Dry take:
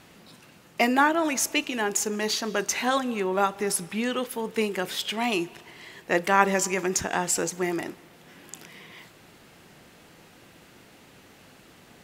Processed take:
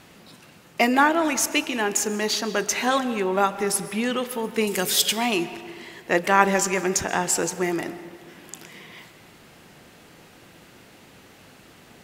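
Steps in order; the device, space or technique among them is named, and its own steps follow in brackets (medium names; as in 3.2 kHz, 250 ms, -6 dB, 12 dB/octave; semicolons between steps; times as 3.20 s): 4.67–5.13 s: tone controls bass +4 dB, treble +14 dB; saturated reverb return (on a send at -12 dB: reverberation RT60 1.9 s, pre-delay 117 ms + saturation -19 dBFS, distortion -15 dB); on the sum: trim +2.5 dB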